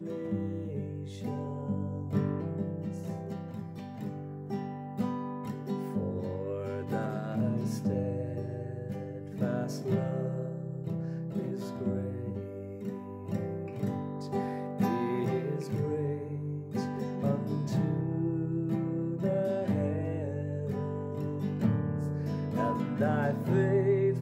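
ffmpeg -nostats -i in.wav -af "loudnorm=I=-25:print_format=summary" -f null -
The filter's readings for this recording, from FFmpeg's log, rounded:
Input Integrated:    -32.7 LUFS
Input True Peak:     -15.2 dBTP
Input LRA:             6.7 LU
Input Threshold:     -42.7 LUFS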